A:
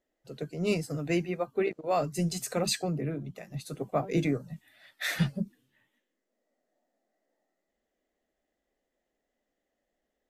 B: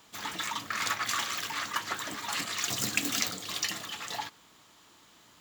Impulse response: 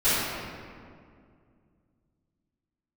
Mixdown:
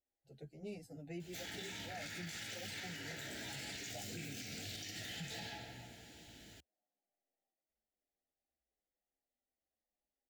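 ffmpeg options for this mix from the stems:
-filter_complex "[0:a]equalizer=f=820:w=6.1:g=14,asplit=2[a][b];[b]adelay=8.1,afreqshift=-0.98[c];[a][c]amix=inputs=2:normalize=1,volume=-15dB[d];[1:a]acompressor=threshold=-38dB:ratio=6,flanger=delay=15.5:depth=4.5:speed=0.47,adelay=1200,volume=-1dB,asplit=2[e][f];[f]volume=-13dB[g];[2:a]atrim=start_sample=2205[h];[g][h]afir=irnorm=-1:irlink=0[i];[d][e][i]amix=inputs=3:normalize=0,asuperstop=centerf=1100:order=4:qfactor=1.4,equalizer=f=71:w=1.1:g=13,alimiter=level_in=12.5dB:limit=-24dB:level=0:latency=1:release=77,volume=-12.5dB"

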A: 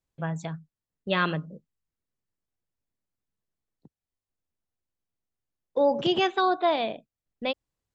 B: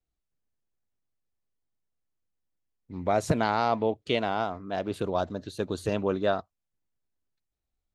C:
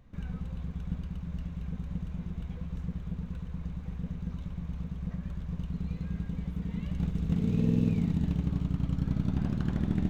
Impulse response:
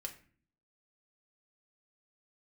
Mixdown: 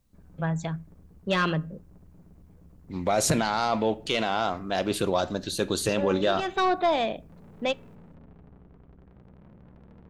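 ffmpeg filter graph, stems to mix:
-filter_complex "[0:a]asoftclip=type=tanh:threshold=-19dB,adelay=200,volume=2dB,asplit=2[a][b];[b]volume=-13.5dB[c];[1:a]highshelf=f=2.2k:g=11.5,asoftclip=type=tanh:threshold=-10dB,volume=1dB,asplit=3[d][e][f];[e]volume=-3dB[g];[2:a]lowpass=1.6k,aeval=exprs='(tanh(89.1*val(0)+0.65)-tanh(0.65))/89.1':c=same,bandreject=f=60:t=h:w=6,bandreject=f=120:t=h:w=6,volume=-9.5dB[h];[f]apad=whole_len=359399[i];[a][i]sidechaincompress=threshold=-33dB:ratio=8:attack=6.3:release=244[j];[3:a]atrim=start_sample=2205[k];[c][g]amix=inputs=2:normalize=0[l];[l][k]afir=irnorm=-1:irlink=0[m];[j][d][h][m]amix=inputs=4:normalize=0,alimiter=limit=-14dB:level=0:latency=1:release=12"

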